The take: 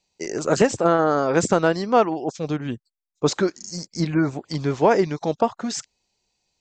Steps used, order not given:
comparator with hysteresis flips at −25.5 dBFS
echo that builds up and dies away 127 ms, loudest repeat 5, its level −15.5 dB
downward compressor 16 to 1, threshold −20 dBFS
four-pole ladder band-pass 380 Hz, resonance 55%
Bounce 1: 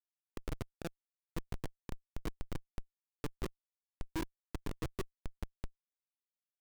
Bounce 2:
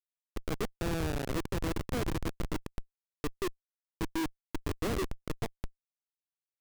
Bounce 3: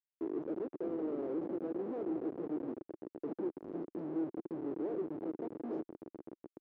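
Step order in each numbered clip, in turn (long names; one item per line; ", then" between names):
echo that builds up and dies away, then downward compressor, then four-pole ladder band-pass, then comparator with hysteresis
four-pole ladder band-pass, then downward compressor, then echo that builds up and dies away, then comparator with hysteresis
downward compressor, then echo that builds up and dies away, then comparator with hysteresis, then four-pole ladder band-pass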